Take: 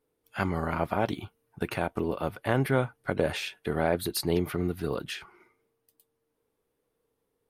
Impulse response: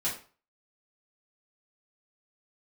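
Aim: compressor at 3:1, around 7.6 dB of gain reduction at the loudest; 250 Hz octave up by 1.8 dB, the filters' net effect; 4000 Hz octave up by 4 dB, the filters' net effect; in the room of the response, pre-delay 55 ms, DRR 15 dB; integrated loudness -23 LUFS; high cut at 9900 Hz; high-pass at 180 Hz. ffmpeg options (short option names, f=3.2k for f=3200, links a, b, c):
-filter_complex "[0:a]highpass=180,lowpass=9.9k,equalizer=f=250:t=o:g=4,equalizer=f=4k:t=o:g=5,acompressor=threshold=-30dB:ratio=3,asplit=2[a][b];[1:a]atrim=start_sample=2205,adelay=55[c];[b][c]afir=irnorm=-1:irlink=0,volume=-20.5dB[d];[a][d]amix=inputs=2:normalize=0,volume=12dB"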